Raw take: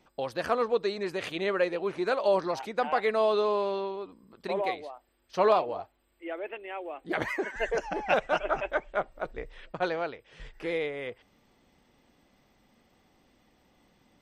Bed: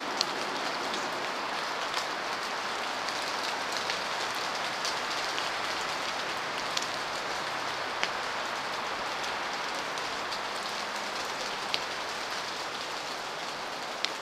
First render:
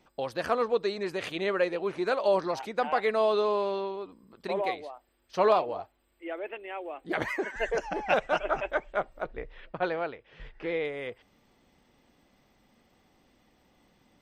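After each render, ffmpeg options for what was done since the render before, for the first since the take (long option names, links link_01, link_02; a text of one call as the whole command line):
ffmpeg -i in.wav -filter_complex "[0:a]asettb=1/sr,asplit=3[link_01][link_02][link_03];[link_01]atrim=end=9.244[link_04];[link_02]atrim=start=9.24:end=10.85,asetpts=PTS-STARTPTS,afade=type=in:duration=0.004:curve=qsin,afade=type=out:start_time=1.606:duration=0.004:curve=qsin,lowpass=3400[link_05];[link_03]atrim=start=10.846[link_06];[link_04][link_05]acrossfade=duration=0.004:curve1=hsin:curve2=qsin[link_07];[link_07][link_06]acrossfade=duration=0.004:curve1=qsin:curve2=hsin" out.wav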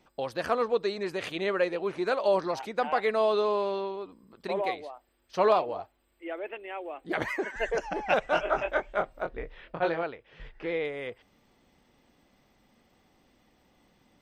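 ffmpeg -i in.wav -filter_complex "[0:a]asettb=1/sr,asplit=3[link_01][link_02][link_03];[link_01]atrim=end=8.254[link_04];[link_02]atrim=start=8.25:end=10.03,asetpts=PTS-STARTPTS,afade=type=in:duration=0.004:curve=qsin,afade=type=out:start_time=1.776:duration=0.004:curve=qsin,asplit=2[link_05][link_06];[link_06]adelay=24,volume=-4dB[link_07];[link_05][link_07]amix=inputs=2:normalize=0,atrim=end_sample=78498[link_08];[link_03]atrim=start=10.026[link_09];[link_04][link_08]acrossfade=duration=0.004:curve1=hsin:curve2=qsin[link_10];[link_10][link_09]acrossfade=duration=0.004:curve1=qsin:curve2=hsin" out.wav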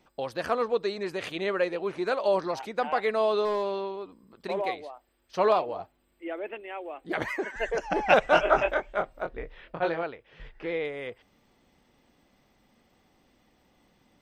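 ffmpeg -i in.wav -filter_complex "[0:a]asettb=1/sr,asplit=3[link_01][link_02][link_03];[link_01]atrim=end=3.454[link_04];[link_02]atrim=start=3.45:end=4.62,asetpts=PTS-STARTPTS,afade=type=in:duration=0.004:curve=qsin,afade=type=out:start_time=1.166:duration=0.004:curve=qsin,volume=22dB,asoftclip=hard,volume=-22dB[link_05];[link_03]atrim=start=4.616[link_06];[link_04][link_05]acrossfade=duration=0.004:curve1=hsin:curve2=qsin[link_07];[link_07][link_06]acrossfade=duration=0.004:curve1=qsin:curve2=hsin,asettb=1/sr,asplit=3[link_08][link_09][link_10];[link_08]atrim=end=5.804[link_11];[link_09]atrim=start=5.8:end=6.61,asetpts=PTS-STARTPTS,afade=type=in:duration=0.004:curve=qsin,afade=type=out:start_time=0.806:duration=0.004:curve=qsin,equalizer=frequency=180:width=0.98:gain=8[link_12];[link_10]atrim=start=6.606[link_13];[link_11][link_12]acrossfade=duration=0.004:curve1=hsin:curve2=qsin[link_14];[link_14][link_13]acrossfade=duration=0.004:curve1=qsin:curve2=hsin,asplit=3[link_15][link_16][link_17];[link_15]atrim=end=7.902[link_18];[link_16]atrim=start=7.898:end=8.742,asetpts=PTS-STARTPTS,volume=5.5dB[link_19];[link_17]atrim=start=8.738[link_20];[link_18][link_19]acrossfade=duration=0.004:curve1=hsin:curve2=hsin[link_21];[link_21][link_20]acrossfade=duration=0.004:curve1=hsin:curve2=hsin" out.wav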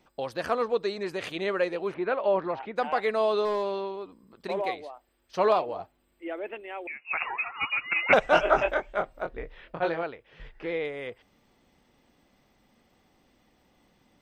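ffmpeg -i in.wav -filter_complex "[0:a]asettb=1/sr,asplit=3[link_01][link_02][link_03];[link_01]atrim=end=1.944[link_04];[link_02]atrim=start=1.94:end=2.76,asetpts=PTS-STARTPTS,afade=type=in:duration=0.004:curve=qsin,afade=type=out:start_time=0.816:duration=0.004:curve=qsin,lowpass=frequency=2900:width=0.5412,lowpass=frequency=2900:width=1.3066[link_05];[link_03]atrim=start=2.756[link_06];[link_04][link_05]acrossfade=duration=0.004:curve1=hsin:curve2=qsin[link_07];[link_07][link_06]acrossfade=duration=0.004:curve1=qsin:curve2=hsin,asettb=1/sr,asplit=3[link_08][link_09][link_10];[link_08]atrim=end=6.874[link_11];[link_09]atrim=start=6.87:end=8.13,asetpts=PTS-STARTPTS,afade=type=in:duration=0.004:curve=qsin,afade=type=out:start_time=1.256:duration=0.004:curve=qsin,lowpass=frequency=2500:width_type=q:width=0.5098,lowpass=frequency=2500:width_type=q:width=0.6013,lowpass=frequency=2500:width_type=q:width=0.9,lowpass=frequency=2500:width_type=q:width=2.563,afreqshift=-2900[link_12];[link_10]atrim=start=8.126[link_13];[link_11][link_12]acrossfade=duration=0.004:curve1=hsin:curve2=qsin[link_14];[link_14][link_13]acrossfade=duration=0.004:curve1=qsin:curve2=hsin" out.wav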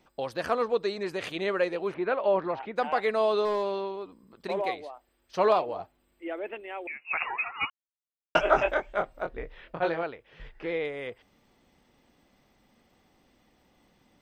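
ffmpeg -i in.wav -filter_complex "[0:a]asplit=3[link_01][link_02][link_03];[link_01]atrim=end=7.7,asetpts=PTS-STARTPTS,afade=type=out:start_time=7.696:duration=0.004:curve=hsin[link_04];[link_02]atrim=start=7.7:end=8.35,asetpts=PTS-STARTPTS,volume=0[link_05];[link_03]atrim=start=8.35,asetpts=PTS-STARTPTS,afade=type=in:duration=0.004:curve=hsin[link_06];[link_04][link_05][link_06]concat=n=3:v=0:a=1" out.wav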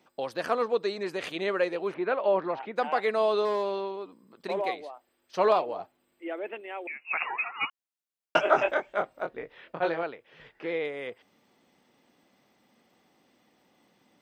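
ffmpeg -i in.wav -af "highpass=170" out.wav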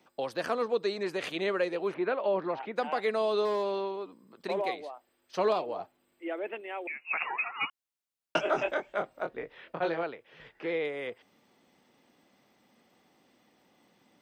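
ffmpeg -i in.wav -filter_complex "[0:a]acrossover=split=420|3000[link_01][link_02][link_03];[link_02]acompressor=threshold=-31dB:ratio=2.5[link_04];[link_01][link_04][link_03]amix=inputs=3:normalize=0" out.wav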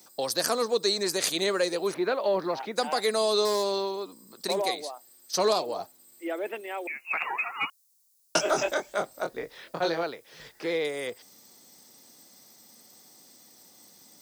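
ffmpeg -i in.wav -filter_complex "[0:a]aexciter=amount=6.6:drive=7.9:freq=4200,asplit=2[link_01][link_02];[link_02]asoftclip=type=tanh:threshold=-21.5dB,volume=-7dB[link_03];[link_01][link_03]amix=inputs=2:normalize=0" out.wav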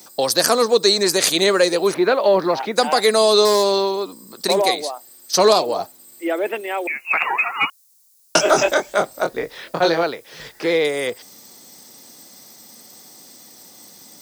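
ffmpeg -i in.wav -af "volume=10.5dB,alimiter=limit=-2dB:level=0:latency=1" out.wav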